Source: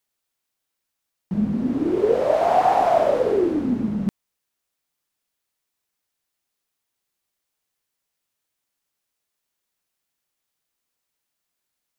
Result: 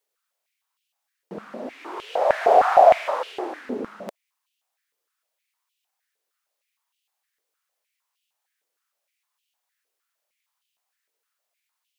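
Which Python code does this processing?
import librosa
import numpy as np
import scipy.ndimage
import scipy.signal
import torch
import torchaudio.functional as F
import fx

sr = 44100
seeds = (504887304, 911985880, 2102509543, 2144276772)

y = fx.filter_held_highpass(x, sr, hz=6.5, low_hz=450.0, high_hz=2900.0)
y = F.gain(torch.from_numpy(y), -1.5).numpy()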